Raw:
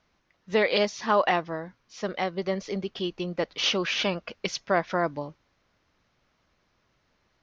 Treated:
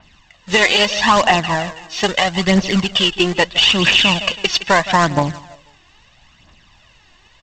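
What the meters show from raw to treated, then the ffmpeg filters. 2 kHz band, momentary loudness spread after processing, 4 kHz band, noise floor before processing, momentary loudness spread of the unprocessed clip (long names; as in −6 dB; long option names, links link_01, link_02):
+15.0 dB, 9 LU, +16.5 dB, −72 dBFS, 12 LU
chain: -af "equalizer=frequency=3000:width_type=o:width=0.78:gain=10.5,aecho=1:1:1.1:0.55,aecho=1:1:163|326|489:0.119|0.0475|0.019,acompressor=threshold=-28dB:ratio=1.5,aresample=16000,acrusher=bits=2:mode=log:mix=0:aa=0.000001,aresample=44100,aphaser=in_gain=1:out_gain=1:delay=2.9:decay=0.53:speed=0.77:type=triangular,alimiter=level_in=14.5dB:limit=-1dB:release=50:level=0:latency=1,adynamicequalizer=threshold=0.0355:dfrequency=5200:dqfactor=0.7:tfrequency=5200:tqfactor=0.7:attack=5:release=100:ratio=0.375:range=2.5:mode=cutabove:tftype=highshelf,volume=-1dB"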